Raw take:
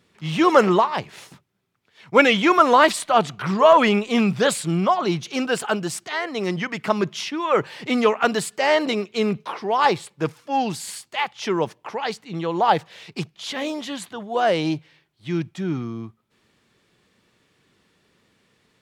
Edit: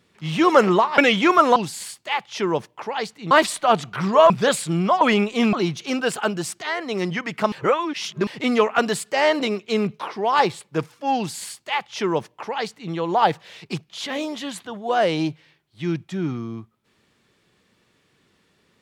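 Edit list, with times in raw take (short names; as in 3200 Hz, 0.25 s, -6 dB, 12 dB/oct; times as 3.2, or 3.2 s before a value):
0.98–2.19 cut
3.76–4.28 move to 4.99
6.98–7.73 reverse
10.63–12.38 copy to 2.77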